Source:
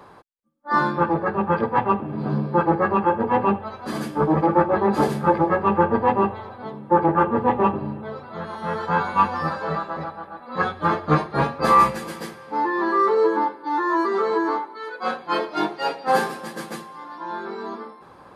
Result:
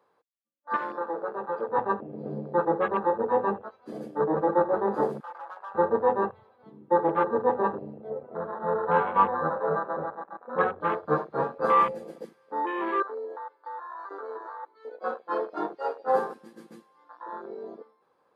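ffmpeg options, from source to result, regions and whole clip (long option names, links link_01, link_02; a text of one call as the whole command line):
ffmpeg -i in.wav -filter_complex "[0:a]asettb=1/sr,asplit=3[link_01][link_02][link_03];[link_01]atrim=end=0.764[link_04];[link_02]atrim=start=0.76:end=1.69,asetpts=PTS-STARTPTS,afade=type=in:duration=0.004:curve=qsin,afade=type=out:start_time=0.926:duration=0.004:curve=qsin,bass=frequency=250:gain=-12,treble=frequency=4000:gain=8,acompressor=threshold=-21dB:ratio=4:attack=3.2:release=140:knee=1:detection=peak[link_05];[link_03]atrim=start=1.686[link_06];[link_04][link_05]acrossfade=duration=0.004:curve1=hsin:curve2=qsin[link_07];[link_07][link_06]acrossfade=duration=0.004:curve1=qsin:curve2=hsin,asettb=1/sr,asplit=3[link_08][link_09][link_10];[link_08]atrim=end=5.204[link_11];[link_09]atrim=start=5.2:end=5.75,asetpts=PTS-STARTPTS,afade=type=in:duration=0.004:curve=qsin,afade=type=out:start_time=0.546:duration=0.004:curve=qsin,highpass=770,acompressor=threshold=-25dB:ratio=4:attack=3.2:release=140:knee=1:detection=peak,asoftclip=type=hard:threshold=-28.5dB[link_12];[link_10]atrim=start=5.746[link_13];[link_11][link_12]acrossfade=duration=0.004:curve1=hsin:curve2=qsin[link_14];[link_14][link_13]acrossfade=duration=0.004:curve1=qsin:curve2=hsin,asettb=1/sr,asplit=3[link_15][link_16][link_17];[link_15]atrim=end=8.104[link_18];[link_16]atrim=start=8.1:end=10.81,asetpts=PTS-STARTPTS,afade=type=in:duration=0.004:curve=qsin,afade=type=out:start_time=2.706:duration=0.004:curve=qsin,lowpass=1900,aemphasis=mode=reproduction:type=75kf,acontrast=42[link_19];[link_17]atrim=start=10.806[link_20];[link_18][link_19]acrossfade=duration=0.004:curve1=hsin:curve2=qsin[link_21];[link_21][link_20]acrossfade=duration=0.004:curve1=qsin:curve2=hsin,asettb=1/sr,asplit=3[link_22][link_23][link_24];[link_22]atrim=end=13.024[link_25];[link_23]atrim=start=13.02:end=14.63,asetpts=PTS-STARTPTS,afade=type=in:duration=0.004:curve=qsin,afade=type=out:start_time=1.606:duration=0.004:curve=qsin,highpass=560,acompressor=threshold=-27dB:ratio=16:attack=3.2:release=140:knee=1:detection=peak[link_26];[link_24]atrim=start=14.626[link_27];[link_25][link_26]acrossfade=duration=0.004:curve1=hsin:curve2=qsin[link_28];[link_28][link_27]acrossfade=duration=0.004:curve1=qsin:curve2=hsin,afwtdn=0.0562,highpass=frequency=360:poles=1,equalizer=frequency=480:width_type=o:width=0.35:gain=9,volume=-6dB" out.wav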